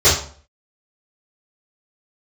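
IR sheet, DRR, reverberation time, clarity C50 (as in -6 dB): -13.5 dB, 0.45 s, 5.5 dB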